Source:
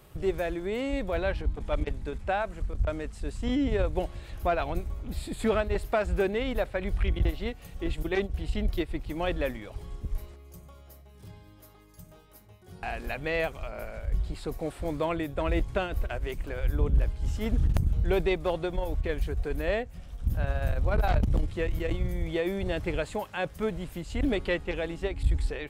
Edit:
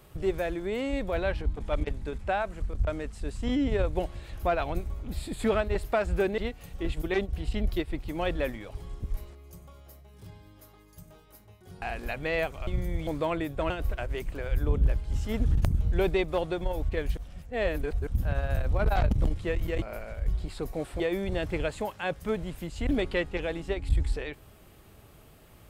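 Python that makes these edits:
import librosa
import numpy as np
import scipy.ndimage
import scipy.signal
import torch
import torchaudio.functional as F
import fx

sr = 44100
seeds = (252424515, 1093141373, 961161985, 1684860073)

y = fx.edit(x, sr, fx.cut(start_s=6.38, length_s=1.01),
    fx.swap(start_s=13.68, length_s=1.18, other_s=21.94, other_length_s=0.4),
    fx.cut(start_s=15.49, length_s=0.33),
    fx.reverse_span(start_s=19.29, length_s=0.9), tone=tone)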